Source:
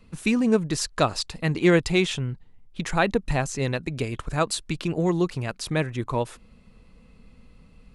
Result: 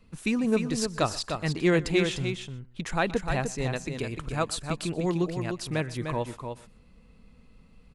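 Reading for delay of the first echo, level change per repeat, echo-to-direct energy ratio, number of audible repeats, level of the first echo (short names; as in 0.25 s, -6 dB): 0.124 s, no steady repeat, -6.5 dB, 3, -20.5 dB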